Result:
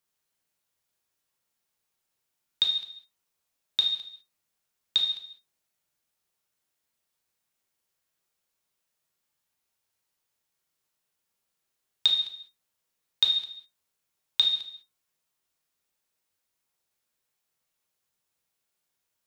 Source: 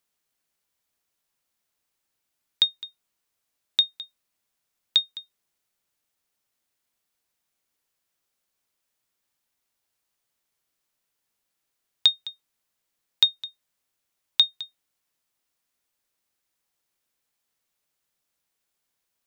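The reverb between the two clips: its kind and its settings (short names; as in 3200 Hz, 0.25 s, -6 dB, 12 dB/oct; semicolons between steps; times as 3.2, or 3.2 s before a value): non-linear reverb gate 0.23 s falling, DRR -0.5 dB; gain -4.5 dB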